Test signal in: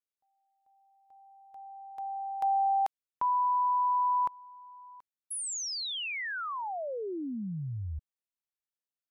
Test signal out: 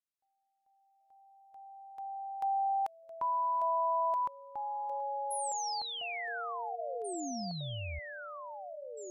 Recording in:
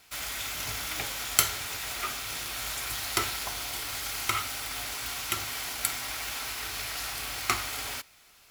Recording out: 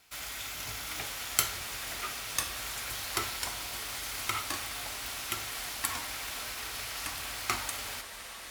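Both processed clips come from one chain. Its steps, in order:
delay with pitch and tempo change per echo 734 ms, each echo −3 semitones, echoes 3, each echo −6 dB
level −4.5 dB
Ogg Vorbis 192 kbit/s 48,000 Hz

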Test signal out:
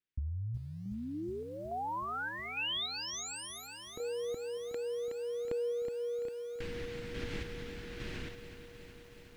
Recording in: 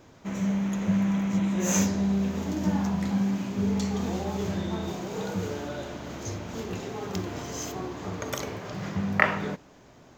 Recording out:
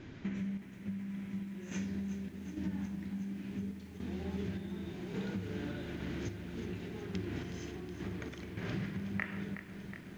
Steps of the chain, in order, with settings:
low-pass filter 3,000 Hz 12 dB per octave
flat-topped bell 770 Hz −11.5 dB
downward compressor 10 to 1, threshold −41 dBFS
sample-and-hold tremolo, depth 70%
feedback echo at a low word length 369 ms, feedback 80%, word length 11 bits, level −11 dB
level +7 dB

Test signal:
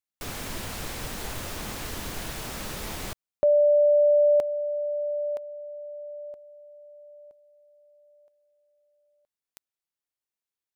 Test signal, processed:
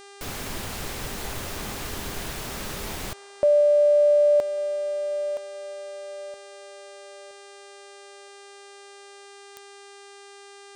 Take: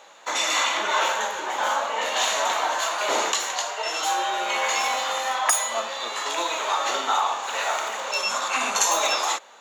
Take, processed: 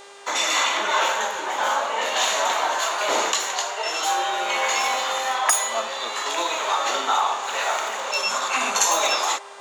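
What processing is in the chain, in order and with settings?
hum with harmonics 400 Hz, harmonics 24, −48 dBFS −4 dB per octave
on a send: delay with a band-pass on its return 178 ms, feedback 77%, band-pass 1,000 Hz, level −22.5 dB
on the sum: level +1.5 dB

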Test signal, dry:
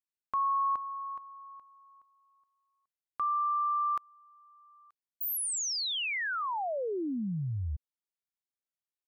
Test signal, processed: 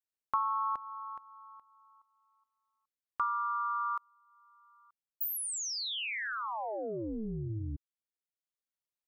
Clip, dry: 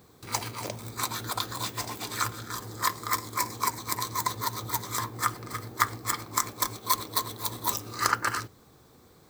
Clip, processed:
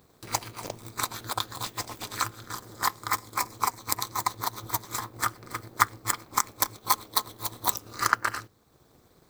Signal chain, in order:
transient designer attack +6 dB, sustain −4 dB
amplitude modulation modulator 220 Hz, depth 75%

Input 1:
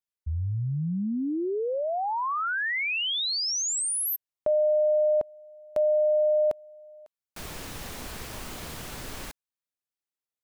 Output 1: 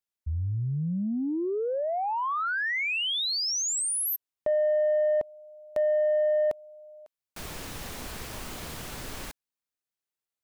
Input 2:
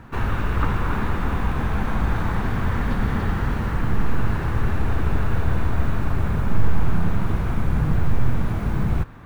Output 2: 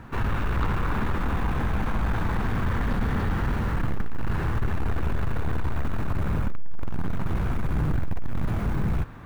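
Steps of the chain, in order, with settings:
soft clipping −18.5 dBFS

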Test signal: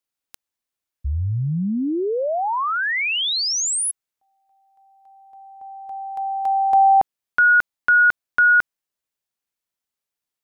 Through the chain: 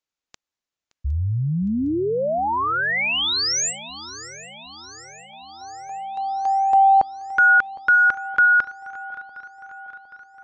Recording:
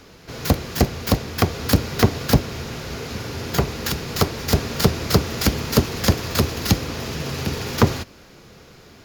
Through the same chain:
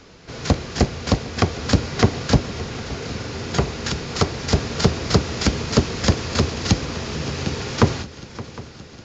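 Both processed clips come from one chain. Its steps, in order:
feedback echo with a long and a short gap by turns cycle 760 ms, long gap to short 3 to 1, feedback 58%, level −17.5 dB
AAC 64 kbit/s 16,000 Hz

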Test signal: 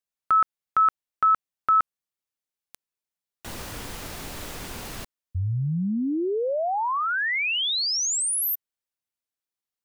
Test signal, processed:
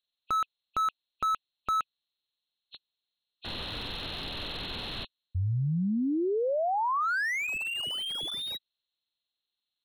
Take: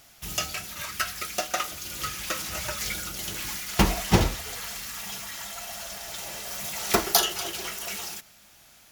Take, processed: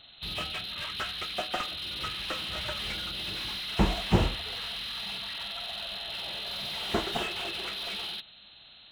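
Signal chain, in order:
hearing-aid frequency compression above 2,500 Hz 4 to 1
slew-rate limiting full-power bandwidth 91 Hz
level −2.5 dB

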